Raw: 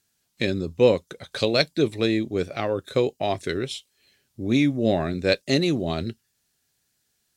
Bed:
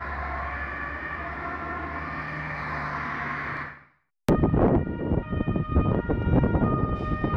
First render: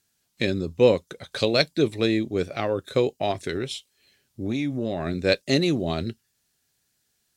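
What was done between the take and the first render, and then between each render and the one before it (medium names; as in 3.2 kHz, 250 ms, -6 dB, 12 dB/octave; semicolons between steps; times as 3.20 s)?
3.31–5.07 s: compression, threshold -22 dBFS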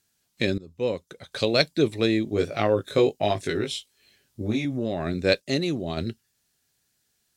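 0.58–1.60 s: fade in, from -19.5 dB; 2.25–4.65 s: doubling 19 ms -3 dB; 5.40–5.97 s: gain -4 dB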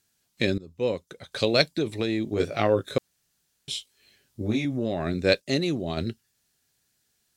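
1.73–2.40 s: compression, threshold -21 dBFS; 2.98–3.68 s: room tone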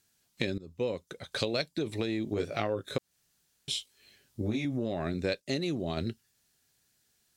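compression 5:1, threshold -28 dBFS, peak gain reduction 12.5 dB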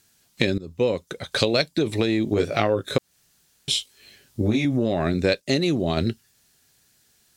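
trim +10 dB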